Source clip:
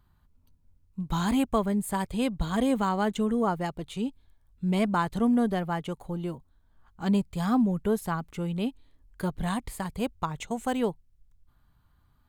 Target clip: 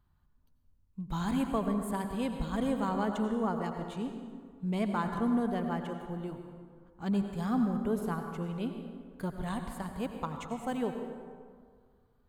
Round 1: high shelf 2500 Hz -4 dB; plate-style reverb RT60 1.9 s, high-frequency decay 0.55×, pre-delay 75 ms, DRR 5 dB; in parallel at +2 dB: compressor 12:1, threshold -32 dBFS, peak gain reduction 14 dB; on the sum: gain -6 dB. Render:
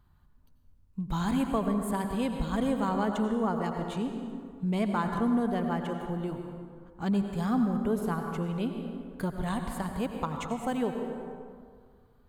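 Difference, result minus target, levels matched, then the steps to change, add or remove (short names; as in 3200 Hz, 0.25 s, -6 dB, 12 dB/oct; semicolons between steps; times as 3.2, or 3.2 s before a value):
compressor: peak gain reduction +14 dB
remove: compressor 12:1, threshold -32 dBFS, peak gain reduction 14 dB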